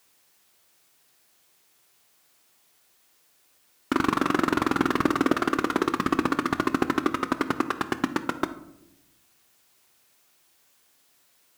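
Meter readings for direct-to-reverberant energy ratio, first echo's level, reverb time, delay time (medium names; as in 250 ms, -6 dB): 9.5 dB, no echo, 0.85 s, no echo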